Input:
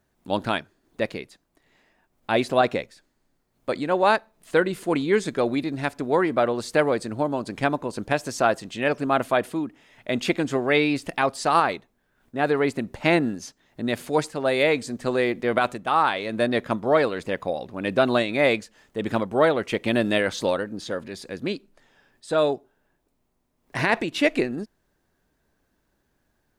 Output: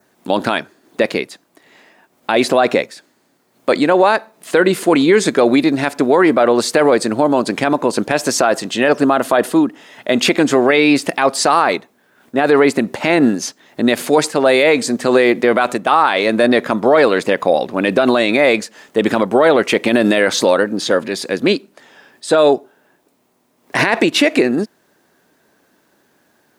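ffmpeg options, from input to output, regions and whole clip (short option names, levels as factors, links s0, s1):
-filter_complex "[0:a]asettb=1/sr,asplit=3[s0][s1][s2];[s0]atrim=end=8.694[s3];[s1]atrim=start=8.69:end=10.14,asetpts=PTS-STARTPTS,afade=t=in:d=0.004:c=qsin,afade=t=out:st=1.446:d=0.004:c=qsin,highpass=43,equalizer=f=2300:t=o:w=0.23:g=-7[s4];[s2]atrim=start=10.136[s5];[s3][s4]acrossfade=d=0.004:c1=hsin:c2=qsin[s6];[s6][s5]acrossfade=d=0.004:c1=qsin:c2=hsin,highpass=220,adynamicequalizer=threshold=0.00562:dfrequency=3100:dqfactor=3.2:tfrequency=3100:tqfactor=3.2:attack=5:release=100:ratio=0.375:range=2:mode=cutabove:tftype=bell,alimiter=level_in=6.68:limit=0.891:release=50:level=0:latency=1,volume=0.891"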